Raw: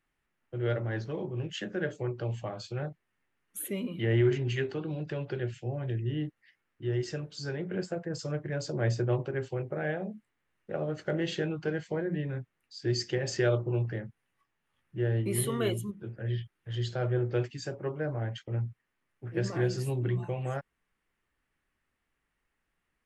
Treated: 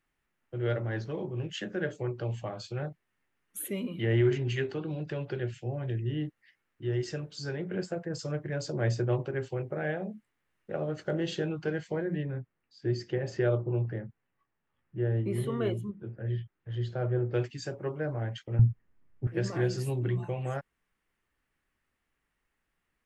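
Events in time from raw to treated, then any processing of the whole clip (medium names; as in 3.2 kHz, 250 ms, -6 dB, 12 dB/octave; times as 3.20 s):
11.03–11.48 s: peaking EQ 2.1 kHz -6 dB 0.61 oct
12.23–17.34 s: low-pass 1.3 kHz 6 dB/octave
18.59–19.27 s: tilt EQ -4 dB/octave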